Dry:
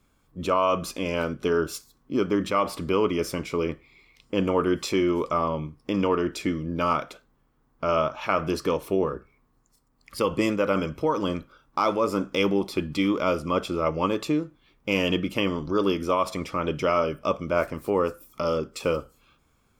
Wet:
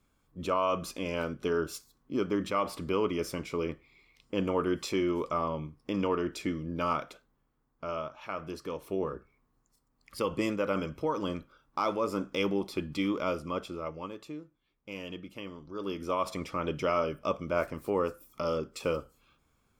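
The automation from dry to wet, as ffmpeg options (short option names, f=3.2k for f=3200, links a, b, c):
-af "volume=12dB,afade=t=out:st=7.07:d=0.96:silence=0.446684,afade=t=in:st=8.68:d=0.45:silence=0.473151,afade=t=out:st=13.19:d=0.94:silence=0.298538,afade=t=in:st=15.72:d=0.55:silence=0.266073"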